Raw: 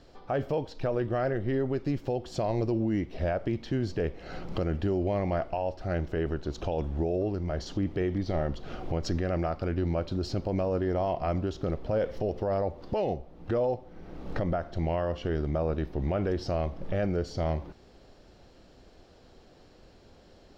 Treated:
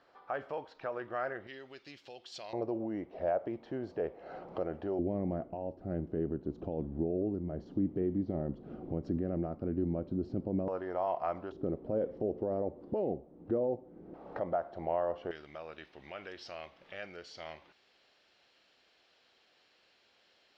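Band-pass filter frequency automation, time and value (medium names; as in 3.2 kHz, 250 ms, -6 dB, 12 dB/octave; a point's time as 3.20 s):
band-pass filter, Q 1.3
1.3 kHz
from 1.47 s 3.5 kHz
from 2.53 s 680 Hz
from 4.99 s 250 Hz
from 10.68 s 1 kHz
from 11.52 s 310 Hz
from 14.14 s 750 Hz
from 15.31 s 2.7 kHz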